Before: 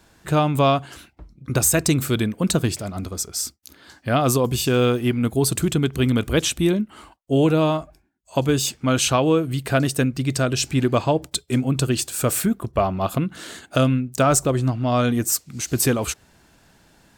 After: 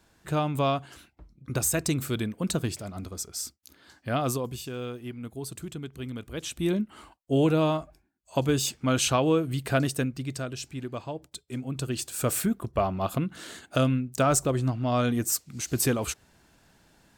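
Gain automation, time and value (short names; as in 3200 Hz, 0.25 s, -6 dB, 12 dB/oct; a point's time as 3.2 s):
4.24 s -8 dB
4.7 s -17 dB
6.34 s -17 dB
6.76 s -5 dB
9.8 s -5 dB
10.72 s -16 dB
11.35 s -16 dB
12.27 s -5.5 dB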